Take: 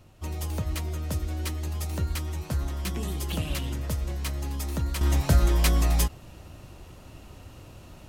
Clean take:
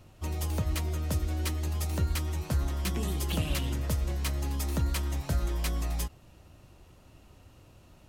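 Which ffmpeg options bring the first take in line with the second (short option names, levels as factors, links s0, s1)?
-af "asetnsamples=n=441:p=0,asendcmd='5.01 volume volume -9dB',volume=1"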